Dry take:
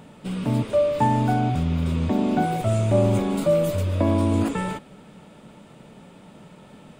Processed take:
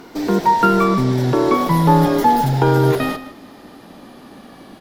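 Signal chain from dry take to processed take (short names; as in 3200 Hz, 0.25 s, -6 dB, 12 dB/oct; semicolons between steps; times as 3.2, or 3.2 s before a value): speed glide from 162% -> 129%; outdoor echo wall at 26 m, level -13 dB; gain +6 dB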